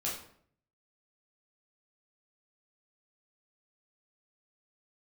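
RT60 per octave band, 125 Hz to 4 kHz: 0.90, 0.70, 0.65, 0.55, 0.50, 0.45 s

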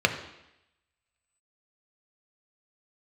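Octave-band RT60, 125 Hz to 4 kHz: 0.75, 0.85, 0.85, 0.85, 0.95, 0.90 s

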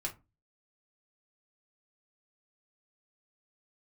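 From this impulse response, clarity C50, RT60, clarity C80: 14.5 dB, 0.25 s, 23.5 dB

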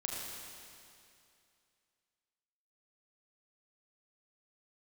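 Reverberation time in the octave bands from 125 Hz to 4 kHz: 2.5, 2.5, 2.5, 2.5, 2.5, 2.4 s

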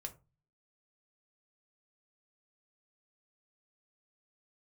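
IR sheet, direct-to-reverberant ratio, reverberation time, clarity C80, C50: 4.5 dB, 0.30 s, 22.5 dB, 16.5 dB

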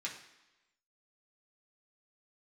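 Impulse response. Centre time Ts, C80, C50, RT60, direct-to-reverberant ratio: 26 ms, 10.5 dB, 7.5 dB, 1.0 s, -4.0 dB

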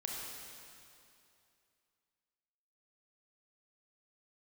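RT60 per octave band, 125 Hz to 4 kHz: 2.6, 2.6, 2.7, 2.6, 2.5, 2.4 s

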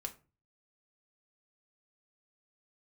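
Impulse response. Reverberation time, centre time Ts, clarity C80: 0.35 s, 7 ms, 21.5 dB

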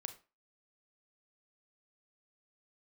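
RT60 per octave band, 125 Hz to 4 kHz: 0.30, 0.30, 0.30, 0.35, 0.30, 0.25 s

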